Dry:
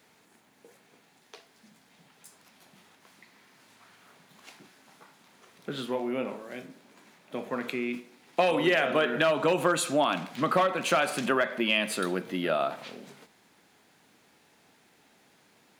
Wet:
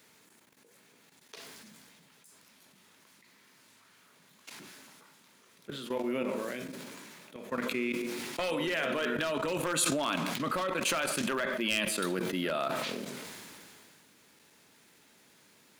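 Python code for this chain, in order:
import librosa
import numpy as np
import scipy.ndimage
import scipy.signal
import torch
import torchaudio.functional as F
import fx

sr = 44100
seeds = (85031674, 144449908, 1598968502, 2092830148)

y = np.minimum(x, 2.0 * 10.0 ** (-17.5 / 20.0) - x)
y = fx.peak_eq(y, sr, hz=750.0, db=-8.0, octaves=0.26)
y = fx.level_steps(y, sr, step_db=16)
y = fx.high_shelf(y, sr, hz=4600.0, db=7.0)
y = fx.echo_filtered(y, sr, ms=142, feedback_pct=41, hz=950.0, wet_db=-18)
y = fx.sustainer(y, sr, db_per_s=22.0)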